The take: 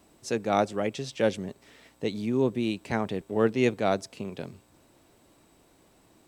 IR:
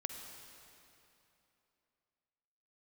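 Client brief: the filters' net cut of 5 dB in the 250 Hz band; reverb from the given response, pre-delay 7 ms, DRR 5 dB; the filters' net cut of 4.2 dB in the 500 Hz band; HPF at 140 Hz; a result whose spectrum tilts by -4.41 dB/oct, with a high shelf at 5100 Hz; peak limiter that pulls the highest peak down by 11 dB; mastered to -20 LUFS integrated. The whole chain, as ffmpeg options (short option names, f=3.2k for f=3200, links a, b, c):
-filter_complex "[0:a]highpass=140,equalizer=f=250:t=o:g=-4.5,equalizer=f=500:t=o:g=-4,highshelf=f=5.1k:g=3,alimiter=limit=-22.5dB:level=0:latency=1,asplit=2[a][b];[1:a]atrim=start_sample=2205,adelay=7[c];[b][c]afir=irnorm=-1:irlink=0,volume=-4.5dB[d];[a][d]amix=inputs=2:normalize=0,volume=15.5dB"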